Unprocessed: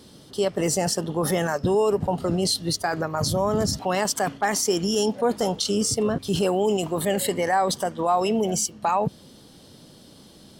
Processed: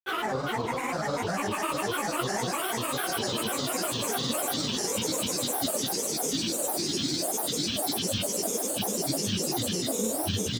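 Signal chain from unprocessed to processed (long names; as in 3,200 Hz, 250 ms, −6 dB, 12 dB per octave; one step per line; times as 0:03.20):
spectrum averaged block by block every 200 ms
extreme stretch with random phases 37×, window 0.25 s, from 0:04.45
granular cloud, pitch spread up and down by 12 semitones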